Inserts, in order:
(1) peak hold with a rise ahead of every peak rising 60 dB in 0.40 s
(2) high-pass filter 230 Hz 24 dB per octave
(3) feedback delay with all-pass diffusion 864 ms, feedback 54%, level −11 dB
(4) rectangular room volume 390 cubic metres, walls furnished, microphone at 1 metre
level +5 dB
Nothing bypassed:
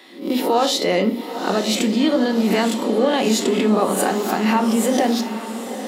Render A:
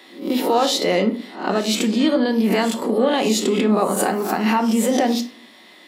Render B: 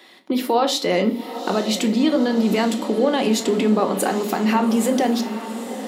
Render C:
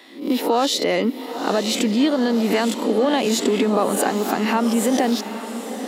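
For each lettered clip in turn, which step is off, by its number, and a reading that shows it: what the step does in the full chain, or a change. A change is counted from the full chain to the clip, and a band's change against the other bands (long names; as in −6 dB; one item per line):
3, echo-to-direct ratio −4.0 dB to −5.5 dB
1, 8 kHz band −1.5 dB
4, echo-to-direct ratio −4.0 dB to −9.5 dB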